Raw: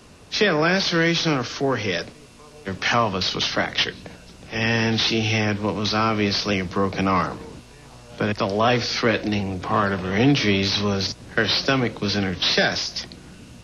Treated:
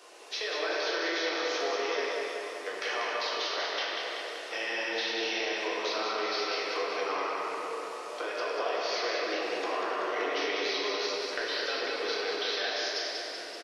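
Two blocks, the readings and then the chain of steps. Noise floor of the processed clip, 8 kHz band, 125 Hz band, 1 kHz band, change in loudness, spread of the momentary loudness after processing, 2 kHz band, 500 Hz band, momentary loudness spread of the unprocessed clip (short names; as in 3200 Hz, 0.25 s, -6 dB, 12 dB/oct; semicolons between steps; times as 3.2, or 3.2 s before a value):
-40 dBFS, n/a, under -40 dB, -8.0 dB, -10.0 dB, 6 LU, -8.0 dB, -7.0 dB, 9 LU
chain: steep high-pass 380 Hz 36 dB/oct; compressor, threshold -32 dBFS, peak gain reduction 16 dB; on a send: feedback echo 0.191 s, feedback 59%, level -5 dB; on the sum: shoebox room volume 200 m³, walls hard, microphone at 0.79 m; gain -4 dB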